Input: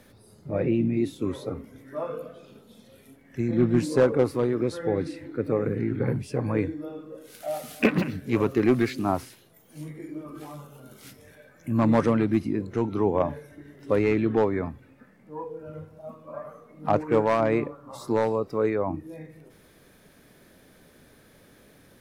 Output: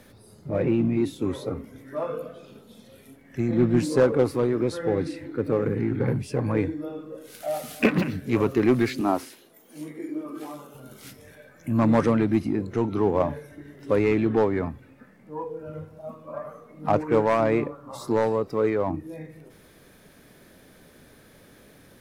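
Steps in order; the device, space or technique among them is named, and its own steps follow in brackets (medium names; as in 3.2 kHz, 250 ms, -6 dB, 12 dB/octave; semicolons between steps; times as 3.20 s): 9.01–10.75 s: resonant low shelf 180 Hz -11.5 dB, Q 1.5; parallel distortion (in parallel at -9 dB: hard clipper -27.5 dBFS, distortion -4 dB)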